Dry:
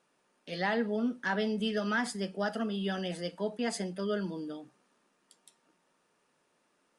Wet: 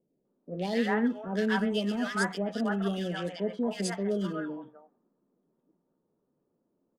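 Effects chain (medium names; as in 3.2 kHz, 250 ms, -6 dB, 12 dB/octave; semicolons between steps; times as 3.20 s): local Wiener filter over 9 samples; three bands offset in time lows, highs, mids 120/250 ms, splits 690/2100 Hz; level-controlled noise filter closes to 420 Hz, open at -32 dBFS; trim +4 dB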